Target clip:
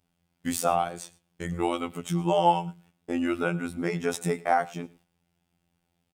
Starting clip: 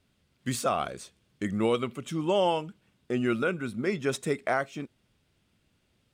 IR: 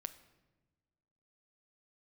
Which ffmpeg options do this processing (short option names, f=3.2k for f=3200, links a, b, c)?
-filter_complex "[0:a]equalizer=f=160:t=o:w=0.33:g=7,equalizer=f=800:t=o:w=0.33:g=12,equalizer=f=4k:t=o:w=0.33:g=-4,agate=range=-9dB:threshold=-57dB:ratio=16:detection=peak,highshelf=f=11k:g=10.5,asplit=2[a][b];[b]acompressor=threshold=-30dB:ratio=6,volume=-2dB[c];[a][c]amix=inputs=2:normalize=0,afftfilt=real='hypot(re,im)*cos(PI*b)':imag='0':win_size=2048:overlap=0.75,asplit=2[d][e];[e]aecho=0:1:110:0.0794[f];[d][f]amix=inputs=2:normalize=0"